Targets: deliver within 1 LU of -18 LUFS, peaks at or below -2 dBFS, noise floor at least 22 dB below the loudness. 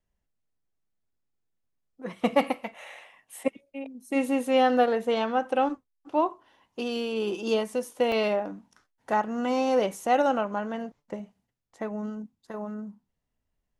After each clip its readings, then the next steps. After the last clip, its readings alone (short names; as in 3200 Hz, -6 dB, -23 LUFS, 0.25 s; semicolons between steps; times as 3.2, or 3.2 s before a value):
dropouts 1; longest dropout 2.2 ms; loudness -27.5 LUFS; peak -9.5 dBFS; loudness target -18.0 LUFS
-> interpolate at 8.12, 2.2 ms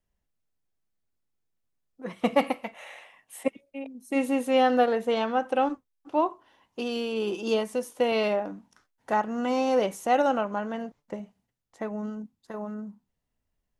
dropouts 0; loudness -27.5 LUFS; peak -9.5 dBFS; loudness target -18.0 LUFS
-> gain +9.5 dB; limiter -2 dBFS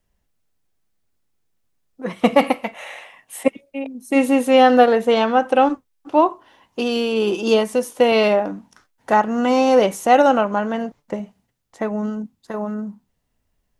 loudness -18.0 LUFS; peak -2.0 dBFS; noise floor -71 dBFS